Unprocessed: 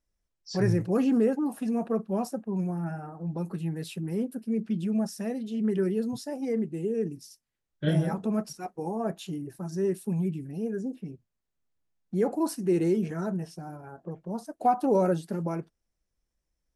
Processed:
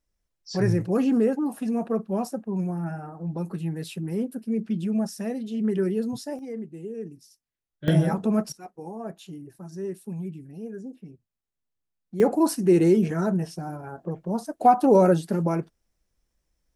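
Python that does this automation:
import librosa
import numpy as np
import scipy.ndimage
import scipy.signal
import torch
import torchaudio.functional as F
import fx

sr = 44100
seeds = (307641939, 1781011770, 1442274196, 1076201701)

y = fx.gain(x, sr, db=fx.steps((0.0, 2.0), (6.39, -6.0), (7.88, 5.0), (8.52, -5.0), (12.2, 6.5)))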